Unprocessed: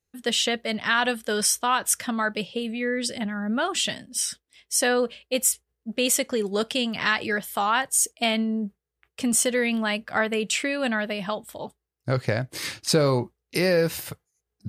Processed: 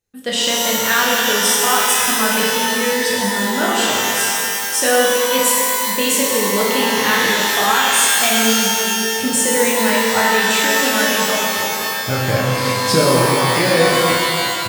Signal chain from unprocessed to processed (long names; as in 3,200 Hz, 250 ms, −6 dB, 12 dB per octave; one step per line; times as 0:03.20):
double-tracking delay 31 ms −5 dB
reverb with rising layers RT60 2.7 s, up +12 semitones, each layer −2 dB, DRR −2.5 dB
level +1.5 dB